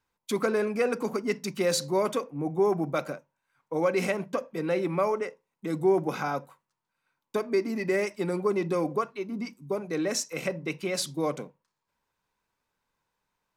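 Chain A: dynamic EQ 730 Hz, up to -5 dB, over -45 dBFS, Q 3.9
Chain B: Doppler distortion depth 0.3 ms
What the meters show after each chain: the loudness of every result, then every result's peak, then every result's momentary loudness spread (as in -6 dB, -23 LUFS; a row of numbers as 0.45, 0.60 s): -29.5, -29.0 LUFS; -12.5, -12.5 dBFS; 9, 9 LU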